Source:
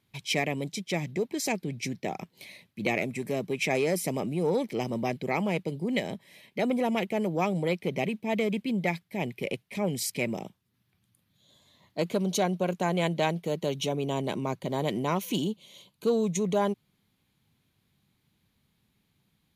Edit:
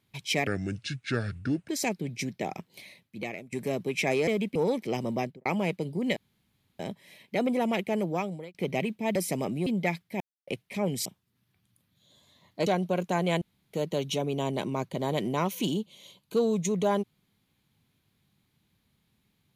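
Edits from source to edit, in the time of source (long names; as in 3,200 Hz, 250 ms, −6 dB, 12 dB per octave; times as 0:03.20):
0:00.47–0:01.32: play speed 70%
0:02.35–0:03.16: fade out, to −19 dB
0:03.91–0:04.42: swap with 0:08.39–0:08.67
0:05.04–0:05.32: fade out and dull
0:06.03: splice in room tone 0.63 s
0:07.27–0:07.78: fade out
0:09.21–0:09.48: silence
0:10.06–0:10.44: remove
0:12.05–0:12.37: remove
0:13.12–0:13.44: fill with room tone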